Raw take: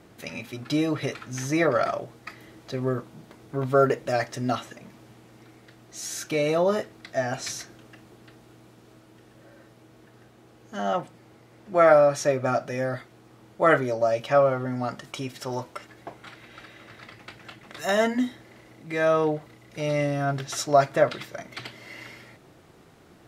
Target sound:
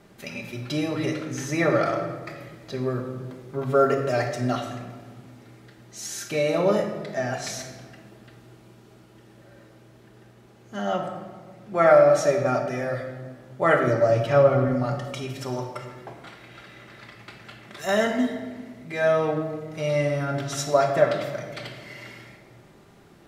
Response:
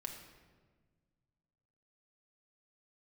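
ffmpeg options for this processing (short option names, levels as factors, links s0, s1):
-filter_complex "[0:a]asettb=1/sr,asplit=3[s0][s1][s2];[s0]atrim=end=13.874[s3];[s1]atrim=start=13.87:end=14.68,asetpts=PTS-STARTPTS,afade=t=in:d=0.004:c=qsin,afade=t=out:st=0.806:d=0.004:c=qsin,lowshelf=f=250:g=11[s4];[s2]atrim=start=14.676[s5];[s3][s4]acrossfade=d=0.004:c1=hsin:c2=qsin[s6];[s6][s5]acrossfade=d=0.004:c1=qsin:c2=hsin[s7];[1:a]atrim=start_sample=2205,asetrate=41895,aresample=44100[s8];[s7][s8]afir=irnorm=-1:irlink=0,volume=1.33"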